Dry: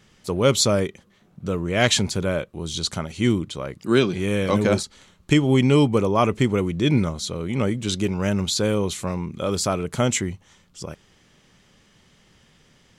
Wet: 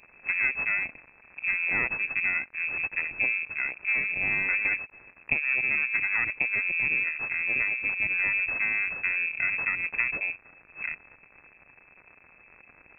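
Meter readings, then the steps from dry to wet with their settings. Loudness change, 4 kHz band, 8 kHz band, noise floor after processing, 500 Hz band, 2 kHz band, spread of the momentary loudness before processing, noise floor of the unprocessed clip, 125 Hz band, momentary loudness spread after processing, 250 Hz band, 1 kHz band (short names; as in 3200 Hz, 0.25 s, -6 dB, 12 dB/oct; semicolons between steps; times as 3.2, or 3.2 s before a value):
-4.0 dB, under -25 dB, under -40 dB, -58 dBFS, -25.5 dB, +8.0 dB, 12 LU, -58 dBFS, -27.0 dB, 8 LU, -27.0 dB, -14.0 dB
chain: fixed phaser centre 350 Hz, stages 6; crackle 270/s -38 dBFS; half-wave rectifier; compressor, threshold -29 dBFS, peak gain reduction 13 dB; inverted band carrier 2600 Hz; gain +5.5 dB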